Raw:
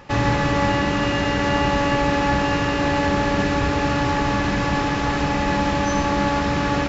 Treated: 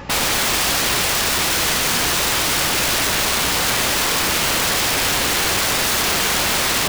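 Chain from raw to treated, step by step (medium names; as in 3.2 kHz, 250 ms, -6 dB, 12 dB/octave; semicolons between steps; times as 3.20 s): in parallel at +1 dB: peak limiter -14 dBFS, peak gain reduction 7 dB; on the sum: integer overflow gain 16.5 dB; hum 60 Hz, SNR 21 dB; trim +2.5 dB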